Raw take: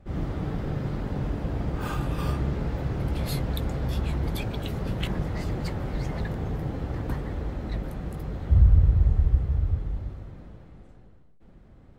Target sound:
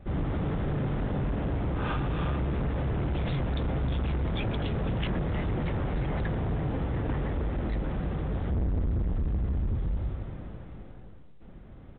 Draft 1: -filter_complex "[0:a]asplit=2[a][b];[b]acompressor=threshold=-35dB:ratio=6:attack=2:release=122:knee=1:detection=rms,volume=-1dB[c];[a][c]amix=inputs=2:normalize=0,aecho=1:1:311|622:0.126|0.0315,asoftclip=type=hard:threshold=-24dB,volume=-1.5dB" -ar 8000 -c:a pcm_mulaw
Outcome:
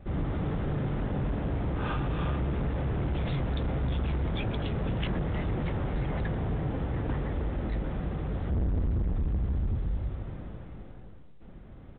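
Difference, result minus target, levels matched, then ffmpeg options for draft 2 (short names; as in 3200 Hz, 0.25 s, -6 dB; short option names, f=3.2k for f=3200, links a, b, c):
compressor: peak gain reduction +6 dB
-filter_complex "[0:a]asplit=2[a][b];[b]acompressor=threshold=-27.5dB:ratio=6:attack=2:release=122:knee=1:detection=rms,volume=-1dB[c];[a][c]amix=inputs=2:normalize=0,aecho=1:1:311|622:0.126|0.0315,asoftclip=type=hard:threshold=-24dB,volume=-1.5dB" -ar 8000 -c:a pcm_mulaw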